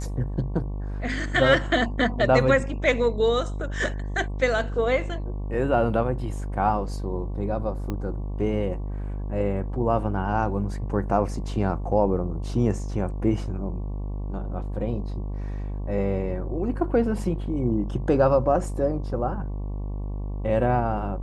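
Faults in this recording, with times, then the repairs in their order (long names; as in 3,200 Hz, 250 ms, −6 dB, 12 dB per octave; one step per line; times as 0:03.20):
mains buzz 50 Hz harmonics 23 −30 dBFS
0:07.90: click −17 dBFS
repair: click removal
hum removal 50 Hz, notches 23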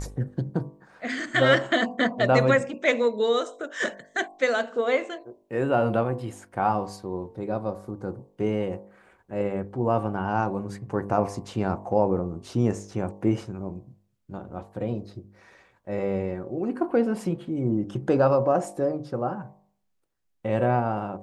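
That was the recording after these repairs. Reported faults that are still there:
0:07.90: click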